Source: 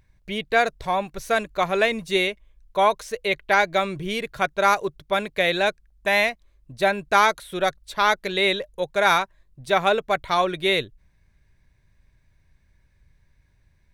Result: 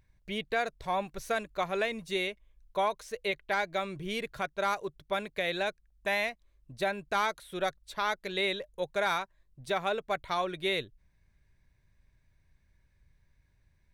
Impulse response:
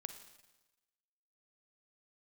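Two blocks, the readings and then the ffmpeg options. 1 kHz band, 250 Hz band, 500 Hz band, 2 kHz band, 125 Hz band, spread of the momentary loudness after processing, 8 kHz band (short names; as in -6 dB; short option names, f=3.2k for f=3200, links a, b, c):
-10.5 dB, -9.0 dB, -9.5 dB, -10.5 dB, -9.0 dB, 6 LU, -10.5 dB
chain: -af "asoftclip=type=hard:threshold=-8.5dB,alimiter=limit=-13.5dB:level=0:latency=1:release=460,volume=-6.5dB"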